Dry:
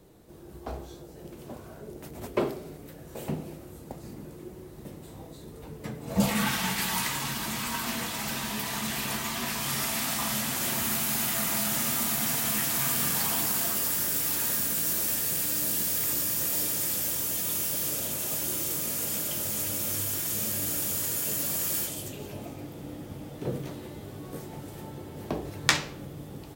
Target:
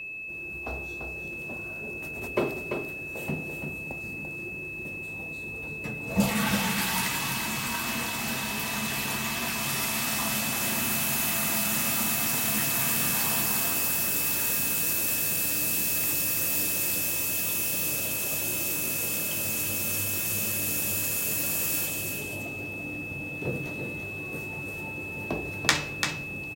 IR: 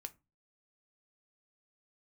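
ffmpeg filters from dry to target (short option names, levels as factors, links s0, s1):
-filter_complex "[0:a]asplit=2[s0][s1];[s1]aecho=0:1:341:0.501[s2];[s0][s2]amix=inputs=2:normalize=0,aeval=exprs='val(0)+0.0178*sin(2*PI*2600*n/s)':c=same"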